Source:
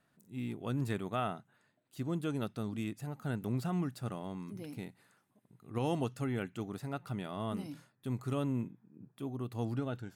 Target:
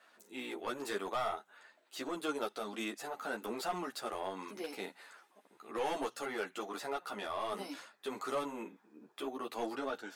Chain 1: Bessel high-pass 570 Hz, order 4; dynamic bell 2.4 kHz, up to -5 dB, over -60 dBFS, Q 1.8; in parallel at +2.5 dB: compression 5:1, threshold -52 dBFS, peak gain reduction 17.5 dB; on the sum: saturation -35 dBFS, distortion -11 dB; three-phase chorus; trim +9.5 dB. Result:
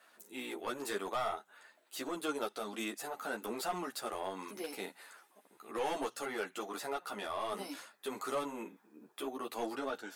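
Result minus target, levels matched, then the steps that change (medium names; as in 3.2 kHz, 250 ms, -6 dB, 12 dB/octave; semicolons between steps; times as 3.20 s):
8 kHz band +3.5 dB
add after compression: low-pass 7.8 kHz 12 dB/octave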